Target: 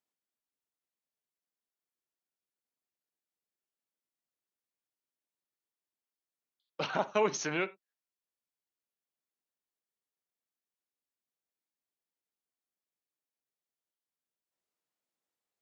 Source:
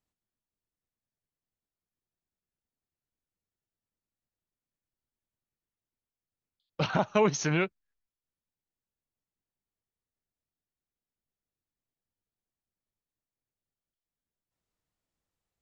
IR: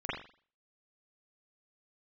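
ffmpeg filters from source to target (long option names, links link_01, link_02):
-filter_complex "[0:a]highpass=290,asplit=2[link_01][link_02];[1:a]atrim=start_sample=2205,atrim=end_sample=4410[link_03];[link_02][link_03]afir=irnorm=-1:irlink=0,volume=-20.5dB[link_04];[link_01][link_04]amix=inputs=2:normalize=0,volume=-3.5dB"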